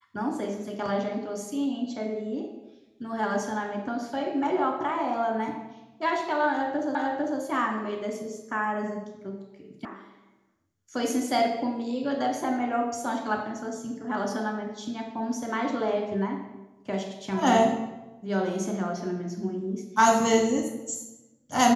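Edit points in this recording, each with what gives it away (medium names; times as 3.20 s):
6.95 s: repeat of the last 0.45 s
9.85 s: sound stops dead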